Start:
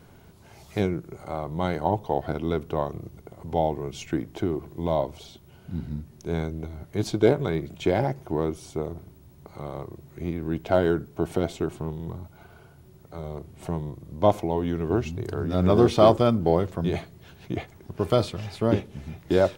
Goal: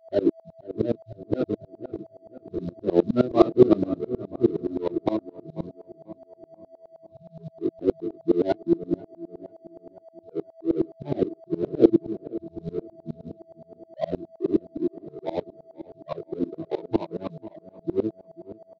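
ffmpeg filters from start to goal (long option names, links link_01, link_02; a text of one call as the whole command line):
ffmpeg -i in.wav -filter_complex "[0:a]areverse,afftfilt=real='re*gte(hypot(re,im),0.178)':imag='im*gte(hypot(re,im),0.178)':win_size=1024:overlap=0.75,adynamicequalizer=threshold=0.0126:dfrequency=230:dqfactor=1.2:tfrequency=230:tqfactor=1.2:attack=5:release=100:ratio=0.375:range=2.5:mode=boostabove:tftype=bell,flanger=delay=18.5:depth=7.5:speed=0.11,adynamicsmooth=sensitivity=5:basefreq=610,aeval=exprs='val(0)+0.00794*sin(2*PI*630*n/s)':channel_layout=same,acrusher=bits=9:mode=log:mix=0:aa=0.000001,asplit=2[link_01][link_02];[link_02]adelay=510,lowpass=frequency=1800:poles=1,volume=-16dB,asplit=2[link_03][link_04];[link_04]adelay=510,lowpass=frequency=1800:poles=1,volume=0.49,asplit=2[link_05][link_06];[link_06]adelay=510,lowpass=frequency=1800:poles=1,volume=0.49,asplit=2[link_07][link_08];[link_08]adelay=510,lowpass=frequency=1800:poles=1,volume=0.49[link_09];[link_03][link_05][link_07][link_09]amix=inputs=4:normalize=0[link_10];[link_01][link_10]amix=inputs=2:normalize=0,asetrate=45938,aresample=44100,highpass=160,equalizer=frequency=180:width_type=q:width=4:gain=-4,equalizer=frequency=330:width_type=q:width=4:gain=9,equalizer=frequency=800:width_type=q:width=4:gain=-10,equalizer=frequency=1800:width_type=q:width=4:gain=-3,equalizer=frequency=3900:width_type=q:width=4:gain=9,lowpass=frequency=5100:width=0.5412,lowpass=frequency=5100:width=1.3066,aeval=exprs='val(0)*pow(10,-26*if(lt(mod(-9.6*n/s,1),2*abs(-9.6)/1000),1-mod(-9.6*n/s,1)/(2*abs(-9.6)/1000),(mod(-9.6*n/s,1)-2*abs(-9.6)/1000)/(1-2*abs(-9.6)/1000))/20)':channel_layout=same,volume=6.5dB" out.wav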